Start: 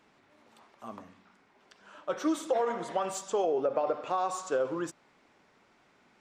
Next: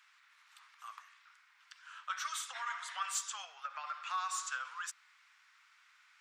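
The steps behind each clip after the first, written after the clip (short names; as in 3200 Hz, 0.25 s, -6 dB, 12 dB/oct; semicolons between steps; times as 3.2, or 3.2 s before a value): steep high-pass 1200 Hz 36 dB/oct; gain +3 dB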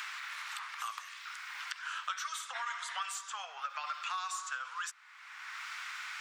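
three-band squash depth 100%; gain +2 dB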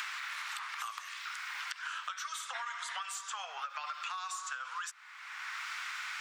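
compressor, threshold -41 dBFS, peak gain reduction 9.5 dB; gain +4.5 dB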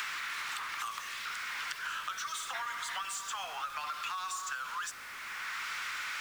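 zero-crossing step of -43.5 dBFS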